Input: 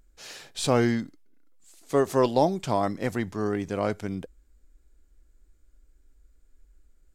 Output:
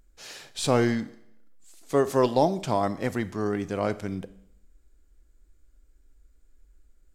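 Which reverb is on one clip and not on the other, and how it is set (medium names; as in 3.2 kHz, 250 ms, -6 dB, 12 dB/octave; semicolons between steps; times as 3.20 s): Schroeder reverb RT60 0.77 s, combs from 28 ms, DRR 15.5 dB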